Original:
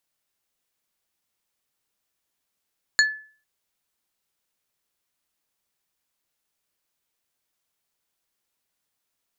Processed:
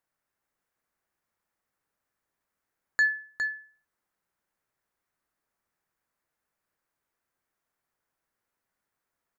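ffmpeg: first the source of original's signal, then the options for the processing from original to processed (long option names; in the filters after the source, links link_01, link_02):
-f lavfi -i "aevalsrc='0.237*pow(10,-3*t/0.43)*sin(2*PI*1730*t)+0.178*pow(10,-3*t/0.143)*sin(2*PI*4325*t)+0.133*pow(10,-3*t/0.081)*sin(2*PI*6920*t)':duration=0.45:sample_rate=44100"
-filter_complex "[0:a]highshelf=frequency=2300:width_type=q:width=1.5:gain=-9,alimiter=limit=-16dB:level=0:latency=1,asplit=2[link_01][link_02];[link_02]aecho=0:1:409:0.473[link_03];[link_01][link_03]amix=inputs=2:normalize=0"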